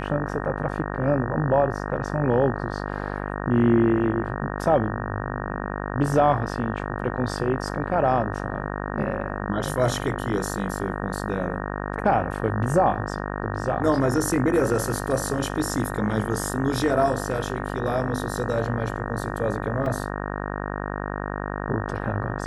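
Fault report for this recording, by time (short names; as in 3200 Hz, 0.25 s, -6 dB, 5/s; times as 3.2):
buzz 50 Hz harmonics 37 -30 dBFS
19.86 gap 2.5 ms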